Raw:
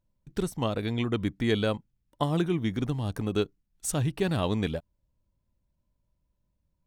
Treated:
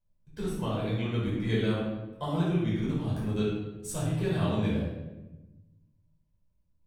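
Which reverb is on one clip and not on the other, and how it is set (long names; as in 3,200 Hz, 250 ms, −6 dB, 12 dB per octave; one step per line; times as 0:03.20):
rectangular room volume 550 cubic metres, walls mixed, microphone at 5.2 metres
level −14.5 dB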